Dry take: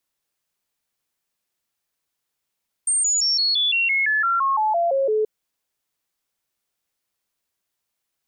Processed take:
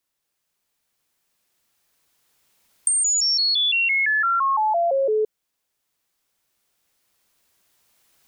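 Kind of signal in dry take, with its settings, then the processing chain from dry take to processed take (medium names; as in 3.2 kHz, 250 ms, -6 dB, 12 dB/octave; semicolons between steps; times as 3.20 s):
stepped sine 8.69 kHz down, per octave 3, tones 14, 0.17 s, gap 0.00 s -17 dBFS
recorder AGC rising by 5.9 dB/s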